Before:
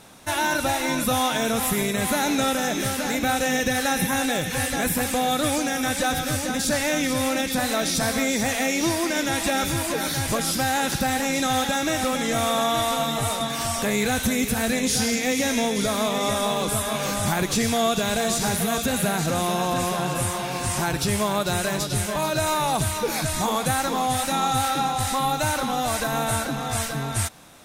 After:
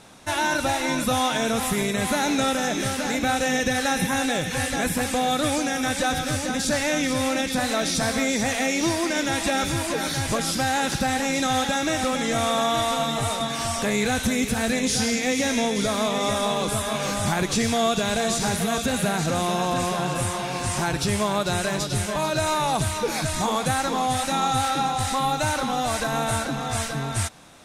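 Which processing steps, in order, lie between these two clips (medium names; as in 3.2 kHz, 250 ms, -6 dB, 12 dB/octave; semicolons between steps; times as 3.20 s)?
low-pass 9.6 kHz 12 dB/octave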